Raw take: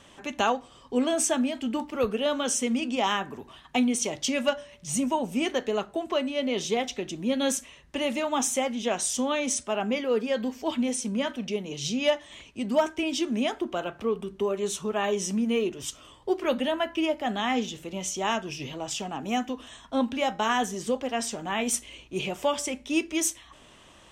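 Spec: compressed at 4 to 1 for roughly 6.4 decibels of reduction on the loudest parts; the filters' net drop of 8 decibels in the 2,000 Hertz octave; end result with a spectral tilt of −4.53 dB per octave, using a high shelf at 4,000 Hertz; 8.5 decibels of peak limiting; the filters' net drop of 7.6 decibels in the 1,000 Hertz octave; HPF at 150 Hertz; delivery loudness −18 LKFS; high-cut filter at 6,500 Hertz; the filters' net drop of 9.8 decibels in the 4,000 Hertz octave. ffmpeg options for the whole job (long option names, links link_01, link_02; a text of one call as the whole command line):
ffmpeg -i in.wav -af "highpass=150,lowpass=6500,equalizer=frequency=1000:width_type=o:gain=-9,equalizer=frequency=2000:width_type=o:gain=-3.5,highshelf=frequency=4000:gain=-7,equalizer=frequency=4000:width_type=o:gain=-7.5,acompressor=threshold=-29dB:ratio=4,volume=19.5dB,alimiter=limit=-9dB:level=0:latency=1" out.wav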